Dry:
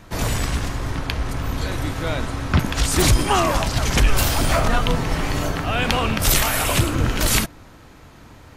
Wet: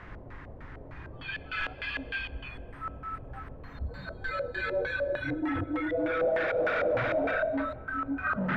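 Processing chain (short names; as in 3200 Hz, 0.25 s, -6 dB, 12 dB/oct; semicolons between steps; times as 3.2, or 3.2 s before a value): Paulstretch 4.9×, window 0.50 s, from 0.73; spectral noise reduction 24 dB; in parallel at -11.5 dB: sine folder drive 15 dB, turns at -15.5 dBFS; on the sum: bit-crush 8-bit; LFO low-pass square 3.3 Hz 580–1800 Hz; on a send at -22 dB: reverb RT60 3.1 s, pre-delay 58 ms; on the sum: gain -6 dB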